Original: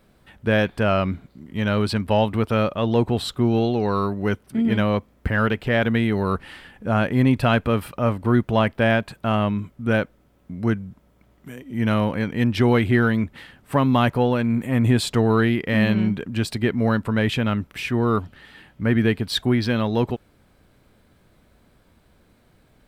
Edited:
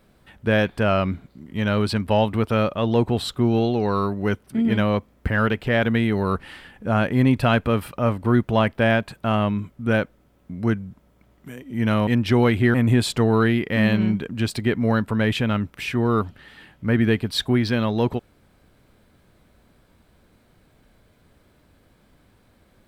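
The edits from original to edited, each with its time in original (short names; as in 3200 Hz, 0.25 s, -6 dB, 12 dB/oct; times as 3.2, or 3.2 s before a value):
12.07–12.36 cut
13.03–14.71 cut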